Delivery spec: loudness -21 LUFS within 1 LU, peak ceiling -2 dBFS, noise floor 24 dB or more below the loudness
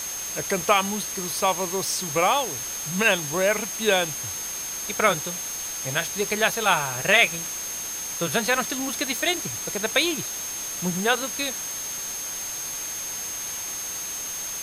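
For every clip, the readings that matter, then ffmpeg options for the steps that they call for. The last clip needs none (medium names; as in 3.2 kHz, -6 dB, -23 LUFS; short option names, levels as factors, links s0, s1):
steady tone 6.4 kHz; tone level -31 dBFS; noise floor -32 dBFS; noise floor target -49 dBFS; loudness -24.5 LUFS; peak level -4.0 dBFS; loudness target -21.0 LUFS
-> -af "bandreject=f=6400:w=30"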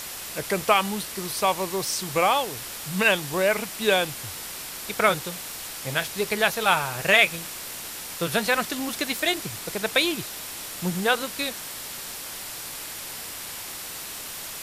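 steady tone not found; noise floor -37 dBFS; noise floor target -50 dBFS
-> -af "afftdn=nr=13:nf=-37"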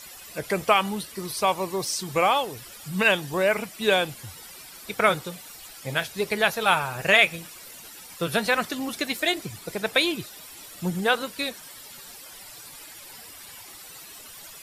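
noise floor -44 dBFS; noise floor target -49 dBFS
-> -af "afftdn=nr=6:nf=-44"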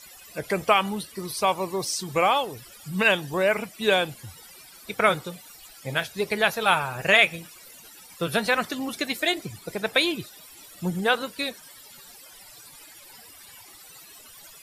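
noise floor -48 dBFS; noise floor target -49 dBFS
-> -af "afftdn=nr=6:nf=-48"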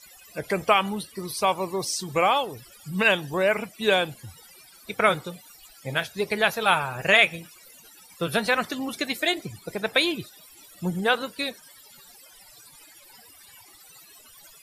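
noise floor -52 dBFS; loudness -24.5 LUFS; peak level -4.0 dBFS; loudness target -21.0 LUFS
-> -af "volume=1.5,alimiter=limit=0.794:level=0:latency=1"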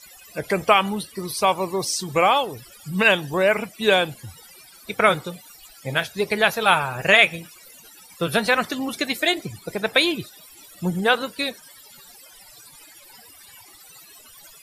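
loudness -21.0 LUFS; peak level -2.0 dBFS; noise floor -48 dBFS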